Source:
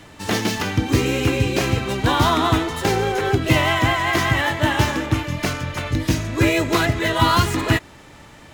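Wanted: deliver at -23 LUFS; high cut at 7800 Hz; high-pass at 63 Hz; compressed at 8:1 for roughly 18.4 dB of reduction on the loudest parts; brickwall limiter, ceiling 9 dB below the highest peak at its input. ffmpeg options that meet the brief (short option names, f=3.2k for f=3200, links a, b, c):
-af "highpass=63,lowpass=7.8k,acompressor=threshold=-32dB:ratio=8,volume=15dB,alimiter=limit=-13.5dB:level=0:latency=1"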